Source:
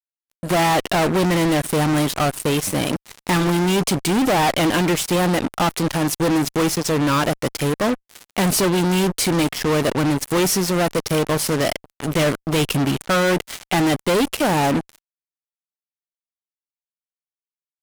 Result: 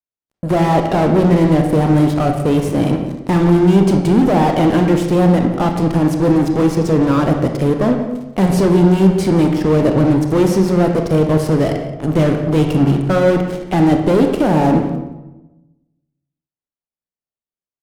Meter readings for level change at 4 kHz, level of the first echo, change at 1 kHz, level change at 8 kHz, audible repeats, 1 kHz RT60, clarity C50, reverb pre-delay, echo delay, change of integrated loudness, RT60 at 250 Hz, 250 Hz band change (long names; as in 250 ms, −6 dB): −7.0 dB, −16.0 dB, +2.0 dB, −10.0 dB, 1, 0.95 s, 5.5 dB, 26 ms, 176 ms, +5.5 dB, 1.2 s, +7.5 dB